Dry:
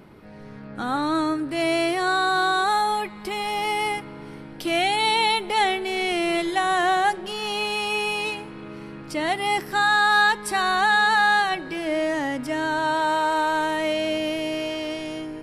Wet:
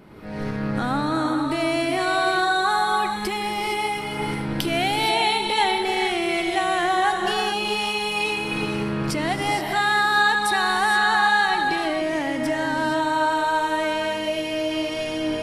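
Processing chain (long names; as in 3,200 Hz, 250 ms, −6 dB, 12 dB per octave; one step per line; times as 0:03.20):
camcorder AGC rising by 38 dB per second
reverb whose tail is shaped and stops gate 490 ms rising, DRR 3 dB
level −1.5 dB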